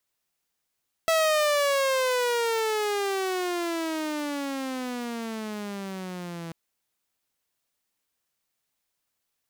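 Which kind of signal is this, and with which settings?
pitch glide with a swell saw, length 5.44 s, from 657 Hz, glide −24 semitones, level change −15 dB, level −17 dB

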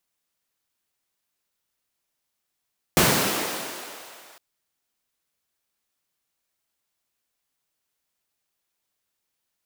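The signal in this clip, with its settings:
filter sweep on noise pink, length 1.41 s highpass, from 110 Hz, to 610 Hz, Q 0.91, linear, gain ramp −33 dB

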